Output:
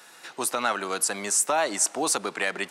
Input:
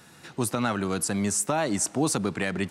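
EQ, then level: HPF 550 Hz 12 dB/oct; +4.0 dB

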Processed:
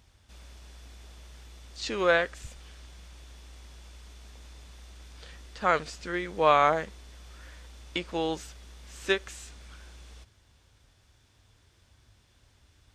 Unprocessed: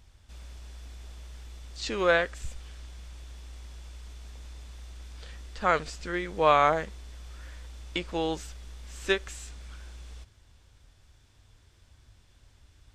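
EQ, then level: HPF 87 Hz 6 dB/oct; notch 7600 Hz, Q 21; 0.0 dB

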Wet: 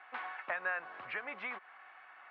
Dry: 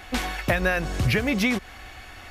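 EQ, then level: ladder band-pass 1400 Hz, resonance 30%; air absorption 480 m; +4.5 dB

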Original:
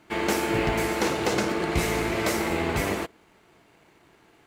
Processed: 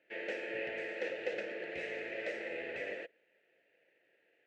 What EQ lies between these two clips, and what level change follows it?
vowel filter e; LPF 8700 Hz 24 dB/oct; bell 2100 Hz +6 dB 1.4 oct; -4.5 dB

